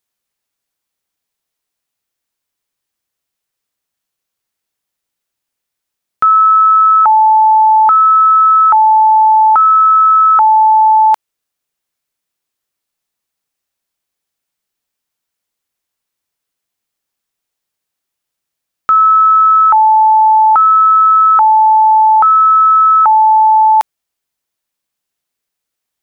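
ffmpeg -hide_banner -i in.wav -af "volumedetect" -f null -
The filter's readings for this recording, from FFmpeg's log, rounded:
mean_volume: -11.5 dB
max_volume: -4.3 dB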